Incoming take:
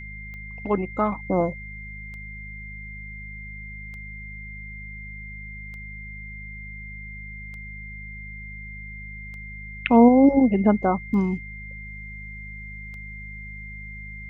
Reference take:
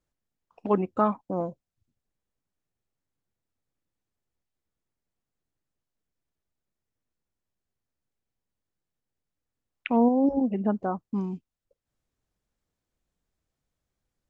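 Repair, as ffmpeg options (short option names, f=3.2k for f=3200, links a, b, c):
-af "adeclick=t=4,bandreject=f=51.9:t=h:w=4,bandreject=f=103.8:t=h:w=4,bandreject=f=155.7:t=h:w=4,bandreject=f=207.6:t=h:w=4,bandreject=f=2.1k:w=30,asetnsamples=n=441:p=0,asendcmd='1.12 volume volume -7.5dB',volume=0dB"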